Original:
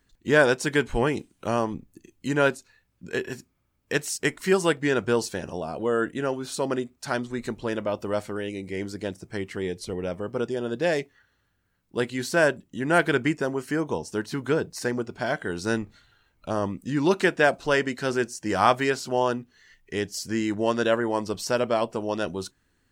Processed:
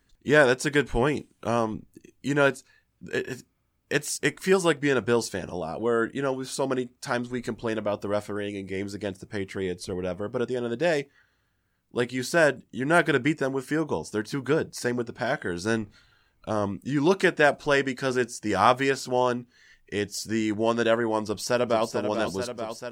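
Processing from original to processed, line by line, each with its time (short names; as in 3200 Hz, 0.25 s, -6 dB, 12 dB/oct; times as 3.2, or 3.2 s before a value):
21.23–21.91 echo throw 0.44 s, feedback 80%, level -8 dB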